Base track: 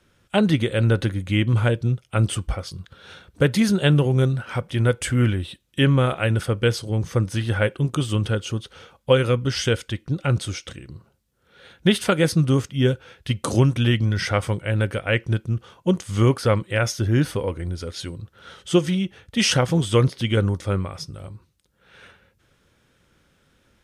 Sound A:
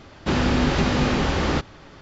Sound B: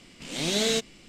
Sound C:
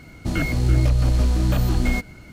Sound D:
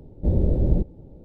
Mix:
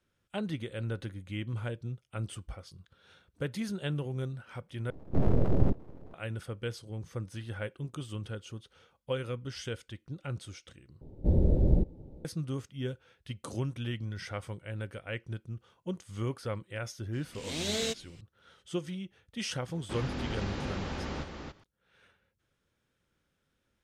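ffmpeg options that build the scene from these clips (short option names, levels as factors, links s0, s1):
-filter_complex "[4:a]asplit=2[s0][s1];[0:a]volume=0.15[s2];[s0]aeval=exprs='abs(val(0))':c=same[s3];[1:a]aecho=1:1:280:0.562[s4];[s2]asplit=3[s5][s6][s7];[s5]atrim=end=4.904[s8];[s3]atrim=end=1.24,asetpts=PTS-STARTPTS,volume=0.75[s9];[s6]atrim=start=6.136:end=11.014[s10];[s1]atrim=end=1.24,asetpts=PTS-STARTPTS,volume=0.631[s11];[s7]atrim=start=12.246[s12];[2:a]atrim=end=1.08,asetpts=PTS-STARTPTS,volume=0.447,afade=t=in:d=0.004:c=hsin,afade=t=out:st=1.076:d=0.004:c=hsin,adelay=17130[s13];[s4]atrim=end=2.01,asetpts=PTS-STARTPTS,volume=0.15,afade=t=in:d=0.004:c=hsin,afade=t=out:st=2.006:d=0.004:c=hsin,adelay=19630[s14];[s8][s9]acrossfade=d=0.004:c1=hsin:c2=hsin[s15];[s15][s10]acrossfade=d=0.004:c1=hsin:c2=hsin[s16];[s16][s11]acrossfade=d=0.004:c1=hsin:c2=hsin[s17];[s17][s12]acrossfade=d=0.004:c1=hsin:c2=hsin[s18];[s18][s13][s14]amix=inputs=3:normalize=0"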